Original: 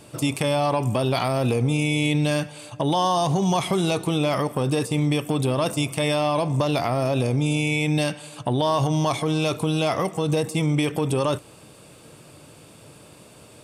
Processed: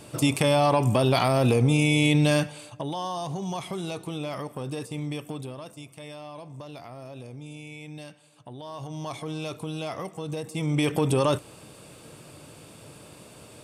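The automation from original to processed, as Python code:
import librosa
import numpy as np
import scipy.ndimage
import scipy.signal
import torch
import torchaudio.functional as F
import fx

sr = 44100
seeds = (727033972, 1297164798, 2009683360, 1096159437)

y = fx.gain(x, sr, db=fx.line((2.44, 1.0), (2.91, -10.5), (5.28, -10.5), (5.68, -19.0), (8.62, -19.0), (9.18, -10.5), (10.43, -10.5), (10.89, 0.0)))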